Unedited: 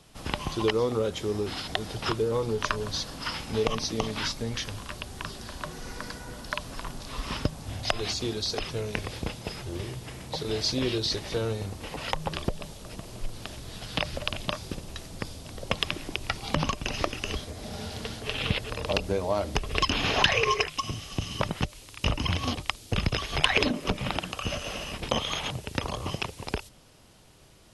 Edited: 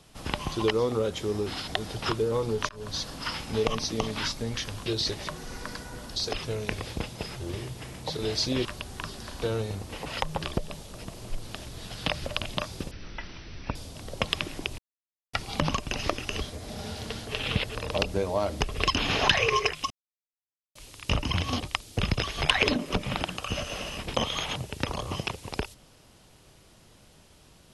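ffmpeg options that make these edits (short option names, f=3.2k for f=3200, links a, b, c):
-filter_complex "[0:a]asplit=12[a][b][c][d][e][f][g][h][i][j][k][l];[a]atrim=end=2.69,asetpts=PTS-STARTPTS,afade=t=out:st=2.686:d=0.004:c=hsin[m];[b]atrim=start=2.69:end=4.862,asetpts=PTS-STARTPTS,afade=t=in:d=0.4:c=qsin[n];[c]atrim=start=10.908:end=11.332[o];[d]atrim=start=5.628:end=6.512[p];[e]atrim=start=8.418:end=10.912[q];[f]atrim=start=4.858:end=5.632[r];[g]atrim=start=11.328:end=14.824[s];[h]atrim=start=14.82:end=15.25,asetpts=PTS-STARTPTS,asetrate=22491,aresample=44100,atrim=end_sample=37182,asetpts=PTS-STARTPTS[t];[i]atrim=start=15.246:end=16.28,asetpts=PTS-STARTPTS,afade=t=out:st=1.03:d=0.004:c=hsin,apad=pad_dur=0.55[u];[j]atrim=start=16.28:end=20.85,asetpts=PTS-STARTPTS,afade=t=in:d=0.004:c=hsin,afade=t=out:st=4.566:d=0.004:c=hsin[v];[k]atrim=start=20.85:end=21.7,asetpts=PTS-STARTPTS,volume=0[w];[l]atrim=start=21.7,asetpts=PTS-STARTPTS,afade=t=in:d=0.004:c=hsin[x];[m][n]concat=n=2:v=0:a=1[y];[y][o]acrossfade=d=0.004:c1=hsin:c2=hsin[z];[z][p]acrossfade=d=0.004:c1=hsin:c2=hsin[aa];[aa][q]acrossfade=d=0.004:c1=hsin:c2=hsin[ab];[ab][r]acrossfade=d=0.004:c1=hsin:c2=hsin[ac];[ac][s]acrossfade=d=0.004:c1=hsin:c2=hsin[ad];[ad][t]acrossfade=d=0.004:c1=hsin:c2=hsin[ae];[u][v][w][x]concat=n=4:v=0:a=1[af];[ae][af]acrossfade=d=0.004:c1=hsin:c2=hsin"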